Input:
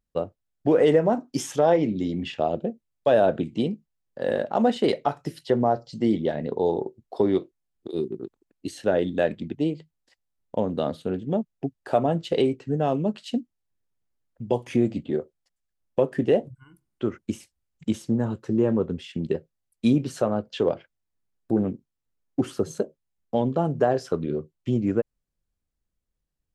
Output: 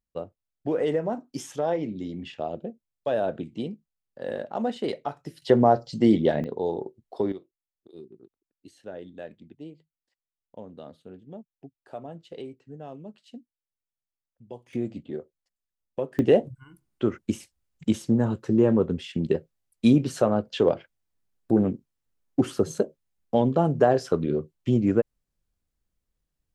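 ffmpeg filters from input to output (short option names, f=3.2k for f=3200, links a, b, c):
-af "asetnsamples=n=441:p=0,asendcmd='5.42 volume volume 3.5dB;6.44 volume volume -4.5dB;7.32 volume volume -17dB;14.73 volume volume -8dB;16.19 volume volume 2dB',volume=-7dB"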